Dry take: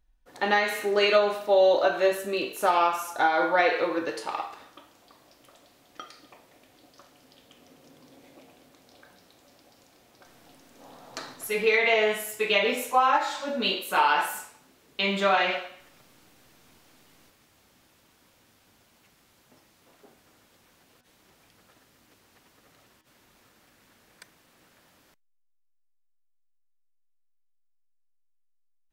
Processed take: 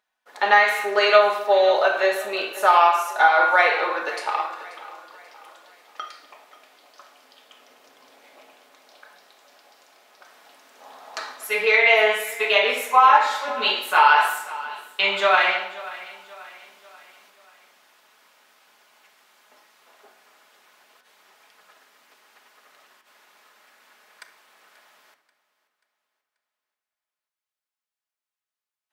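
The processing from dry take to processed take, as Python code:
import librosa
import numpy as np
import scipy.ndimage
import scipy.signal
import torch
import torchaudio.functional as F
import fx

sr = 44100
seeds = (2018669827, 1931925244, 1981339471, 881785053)

y = scipy.signal.sosfilt(scipy.signal.butter(2, 800.0, 'highpass', fs=sr, output='sos'), x)
y = fx.high_shelf(y, sr, hz=3300.0, db=-9.0)
y = fx.echo_feedback(y, sr, ms=535, feedback_pct=45, wet_db=-18)
y = fx.room_shoebox(y, sr, seeds[0], volume_m3=2700.0, walls='furnished', distance_m=1.4)
y = y * 10.0 ** (9.0 / 20.0)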